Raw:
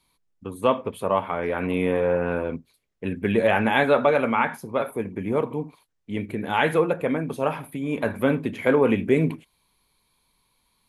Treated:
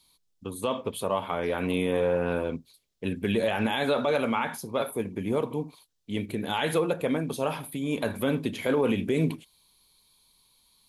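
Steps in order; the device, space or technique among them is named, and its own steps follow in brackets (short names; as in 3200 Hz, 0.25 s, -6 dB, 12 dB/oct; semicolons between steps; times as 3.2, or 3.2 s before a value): over-bright horn tweeter (resonant high shelf 2800 Hz +8 dB, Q 1.5; limiter -13.5 dBFS, peak gain reduction 9 dB); gain -2 dB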